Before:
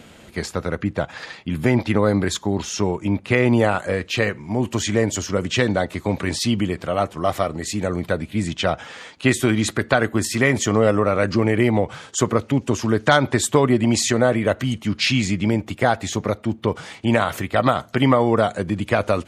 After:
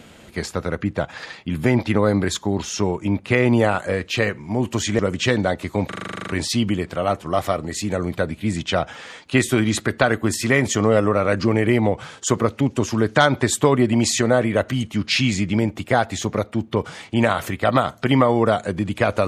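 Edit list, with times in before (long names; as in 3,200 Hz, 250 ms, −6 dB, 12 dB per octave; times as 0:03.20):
0:04.99–0:05.30: remove
0:06.19: stutter 0.04 s, 11 plays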